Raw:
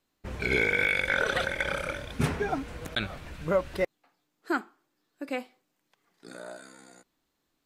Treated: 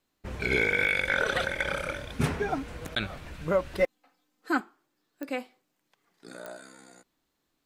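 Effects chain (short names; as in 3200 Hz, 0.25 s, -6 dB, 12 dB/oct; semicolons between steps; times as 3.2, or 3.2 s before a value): 3.79–4.6 comb 3.9 ms, depth 73%; pops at 5.23/6.46, -23 dBFS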